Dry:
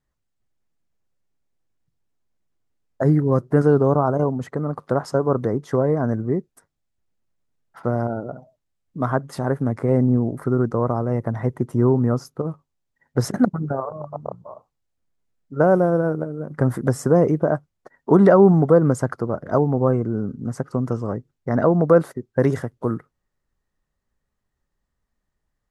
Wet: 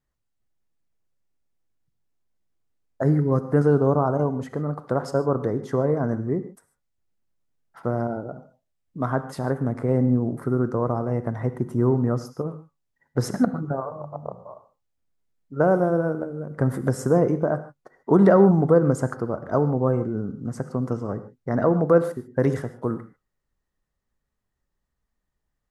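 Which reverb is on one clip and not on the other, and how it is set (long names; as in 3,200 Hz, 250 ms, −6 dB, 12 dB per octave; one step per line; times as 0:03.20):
reverb whose tail is shaped and stops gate 170 ms flat, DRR 11 dB
level −3 dB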